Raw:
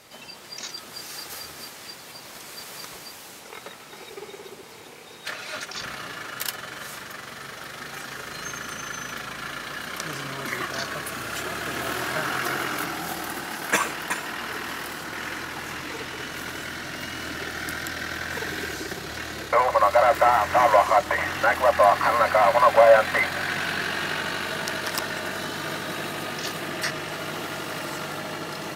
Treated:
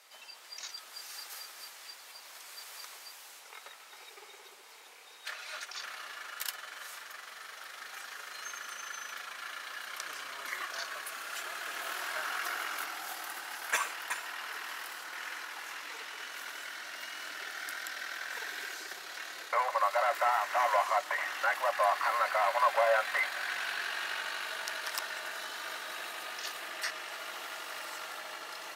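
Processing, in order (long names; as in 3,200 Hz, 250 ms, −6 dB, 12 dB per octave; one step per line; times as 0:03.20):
high-pass filter 790 Hz 12 dB per octave
level −7.5 dB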